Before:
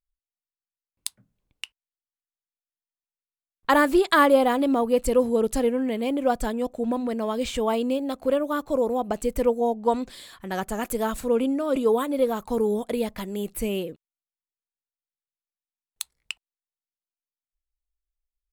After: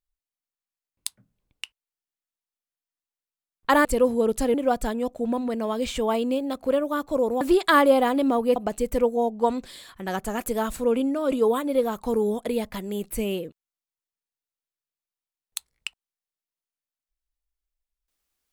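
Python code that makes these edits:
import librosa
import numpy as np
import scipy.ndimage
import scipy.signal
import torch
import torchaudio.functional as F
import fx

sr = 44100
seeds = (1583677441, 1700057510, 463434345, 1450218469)

y = fx.edit(x, sr, fx.move(start_s=3.85, length_s=1.15, to_s=9.0),
    fx.cut(start_s=5.69, length_s=0.44), tone=tone)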